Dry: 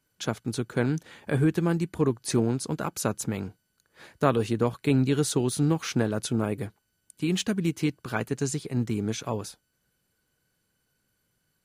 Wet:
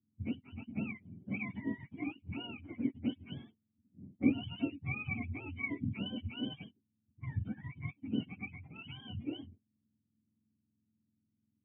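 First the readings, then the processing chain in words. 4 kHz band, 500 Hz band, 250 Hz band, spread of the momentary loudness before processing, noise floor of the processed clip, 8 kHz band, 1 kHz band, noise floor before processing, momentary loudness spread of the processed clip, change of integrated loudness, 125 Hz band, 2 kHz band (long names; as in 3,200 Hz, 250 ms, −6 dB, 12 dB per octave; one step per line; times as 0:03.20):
−10.5 dB, −22.5 dB, −10.5 dB, 8 LU, −83 dBFS, below −40 dB, −19.5 dB, −76 dBFS, 12 LU, −12.0 dB, −14.0 dB, −6.5 dB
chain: frequency axis turned over on the octave scale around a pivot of 570 Hz
low-pass that shuts in the quiet parts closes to 490 Hz, open at −24 dBFS
formant resonators in series i
level +3.5 dB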